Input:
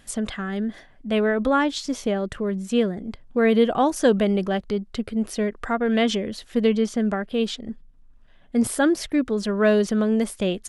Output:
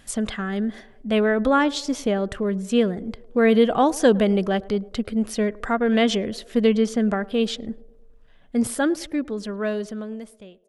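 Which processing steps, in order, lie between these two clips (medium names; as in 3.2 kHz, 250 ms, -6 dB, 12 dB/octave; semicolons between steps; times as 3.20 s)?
fade out at the end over 2.77 s; band-passed feedback delay 107 ms, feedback 61%, band-pass 520 Hz, level -20 dB; trim +1.5 dB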